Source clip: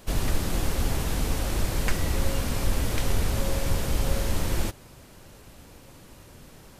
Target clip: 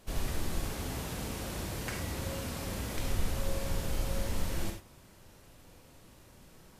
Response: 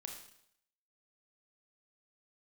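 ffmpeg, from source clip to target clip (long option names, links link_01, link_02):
-filter_complex "[0:a]asettb=1/sr,asplit=3[link_01][link_02][link_03];[link_01]atrim=end=0.644[link_04];[link_02]atrim=start=0.64:end=2.96,asetpts=PTS-STARTPTS,afade=type=in:duration=0.004:curve=qsin,afade=type=out:start_time=2.316:duration=0.004:curve=qsin,highpass=64[link_05];[link_03]atrim=start=2.956[link_06];[link_04][link_05]acrossfade=duration=0.004:curve1=hsin:curve2=qsin[link_07];[link_07][link_06]acrossfade=duration=0.004:curve1=qsin:curve2=hsin[link_08];[1:a]atrim=start_sample=2205,atrim=end_sample=3528,asetrate=33516,aresample=44100[link_09];[link_08][link_09]afir=irnorm=-1:irlink=0,volume=-5dB"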